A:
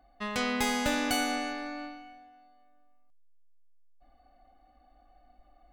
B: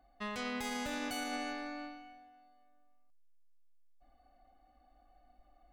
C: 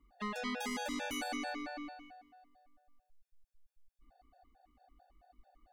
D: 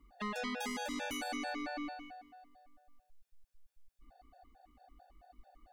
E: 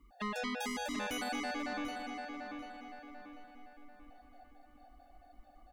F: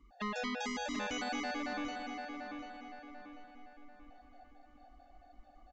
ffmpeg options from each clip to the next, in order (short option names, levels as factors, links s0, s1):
-af "alimiter=level_in=1.12:limit=0.0631:level=0:latency=1:release=54,volume=0.891,volume=0.596"
-af "afftfilt=real='re*gt(sin(2*PI*4.5*pts/sr)*(1-2*mod(floor(b*sr/1024/470),2)),0)':imag='im*gt(sin(2*PI*4.5*pts/sr)*(1-2*mod(floor(b*sr/1024/470),2)),0)':win_size=1024:overlap=0.75,volume=1.41"
-af "alimiter=level_in=3.16:limit=0.0631:level=0:latency=1:release=454,volume=0.316,volume=1.68"
-filter_complex "[0:a]asplit=2[s0][s1];[s1]adelay=741,lowpass=f=3700:p=1,volume=0.531,asplit=2[s2][s3];[s3]adelay=741,lowpass=f=3700:p=1,volume=0.44,asplit=2[s4][s5];[s5]adelay=741,lowpass=f=3700:p=1,volume=0.44,asplit=2[s6][s7];[s7]adelay=741,lowpass=f=3700:p=1,volume=0.44,asplit=2[s8][s9];[s9]adelay=741,lowpass=f=3700:p=1,volume=0.44[s10];[s0][s2][s4][s6][s8][s10]amix=inputs=6:normalize=0,volume=1.12"
-af "aresample=16000,aresample=44100"